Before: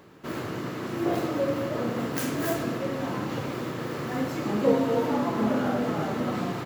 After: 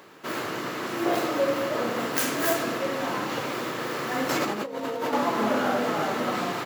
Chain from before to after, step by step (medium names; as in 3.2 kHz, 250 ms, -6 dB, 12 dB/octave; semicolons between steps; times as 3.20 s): 4.29–5.13 s: compressor with a negative ratio -31 dBFS, ratio -1; high-pass 690 Hz 6 dB/octave; trim +7 dB